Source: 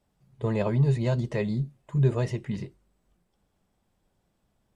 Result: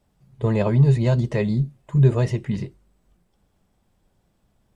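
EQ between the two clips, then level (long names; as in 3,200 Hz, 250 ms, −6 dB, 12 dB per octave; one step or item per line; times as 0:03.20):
low-shelf EQ 170 Hz +4 dB
+4.5 dB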